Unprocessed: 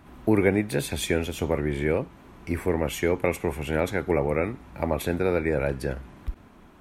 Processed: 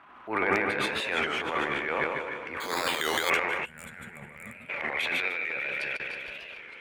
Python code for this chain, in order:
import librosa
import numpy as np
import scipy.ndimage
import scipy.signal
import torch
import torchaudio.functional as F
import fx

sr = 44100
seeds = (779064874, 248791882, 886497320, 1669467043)

y = fx.reverse_delay_fb(x, sr, ms=299, feedback_pct=66, wet_db=-13.5)
y = fx.filter_sweep_bandpass(y, sr, from_hz=1200.0, to_hz=2600.0, start_s=2.66, end_s=5.72, q=2.3)
y = fx.echo_feedback(y, sr, ms=150, feedback_pct=50, wet_db=-6)
y = fx.transient(y, sr, attack_db=-10, sustain_db=10)
y = fx.resample_bad(y, sr, factor=8, down='filtered', up='hold', at=(2.6, 3.3))
y = fx.level_steps(y, sr, step_db=22, at=(5.28, 6.0))
y = fx.peak_eq(y, sr, hz=2800.0, db=8.0, octaves=1.0)
y = 10.0 ** (-20.0 / 20.0) * (np.abs((y / 10.0 ** (-20.0 / 20.0) + 3.0) % 4.0 - 2.0) - 1.0)
y = fx.spec_box(y, sr, start_s=3.65, length_s=1.06, low_hz=250.0, high_hz=6900.0, gain_db=-20)
y = fx.record_warp(y, sr, rpm=33.33, depth_cents=160.0)
y = F.gain(torch.from_numpy(y), 7.0).numpy()